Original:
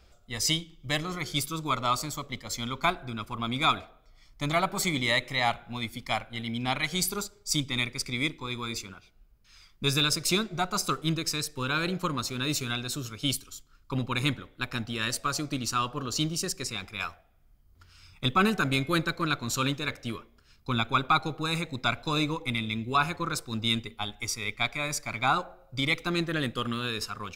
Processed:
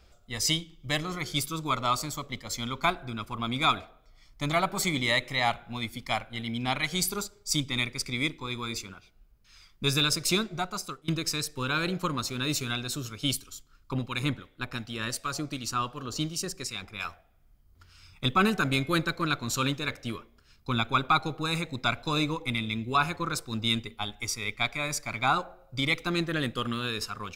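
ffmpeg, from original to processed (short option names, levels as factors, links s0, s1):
-filter_complex "[0:a]asettb=1/sr,asplit=3[s0][s1][s2];[s0]atrim=end=13.934[s3];[s1]atrim=start=13.93:end=17.05,asetpts=PTS-STARTPTS,afade=t=in:d=0.004:c=qsin,afade=t=out:st=3.116:d=0.004:c=qsin,acrossover=split=1600[s4][s5];[s4]aeval=exprs='val(0)*(1-0.5/2+0.5/2*cos(2*PI*2.7*n/s))':c=same[s6];[s5]aeval=exprs='val(0)*(1-0.5/2-0.5/2*cos(2*PI*2.7*n/s))':c=same[s7];[s6][s7]amix=inputs=2:normalize=0[s8];[s2]atrim=start=17.046[s9];[s3][s8]acrossfade=d=0.004:c1=hsin:c2=qsin[s10];[s10][s9]acrossfade=d=0.004:c1=qsin:c2=hsin,asplit=2[s11][s12];[s11]atrim=end=11.08,asetpts=PTS-STARTPTS,afade=t=out:st=10.44:d=0.64:silence=0.0668344[s13];[s12]atrim=start=11.08,asetpts=PTS-STARTPTS,afade=t=in:d=0.004:c=hsin:silence=0.0668344[s14];[s13][s14]concat=n=2:v=0:a=1"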